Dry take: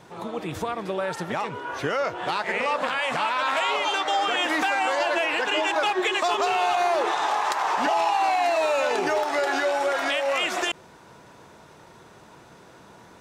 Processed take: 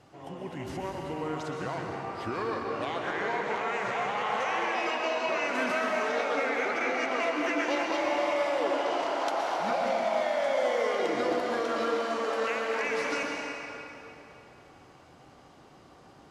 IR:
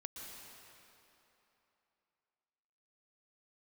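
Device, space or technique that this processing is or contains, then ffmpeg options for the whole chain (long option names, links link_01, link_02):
slowed and reverbed: -filter_complex "[0:a]asetrate=35721,aresample=44100[link_01];[1:a]atrim=start_sample=2205[link_02];[link_01][link_02]afir=irnorm=-1:irlink=0,volume=-2.5dB"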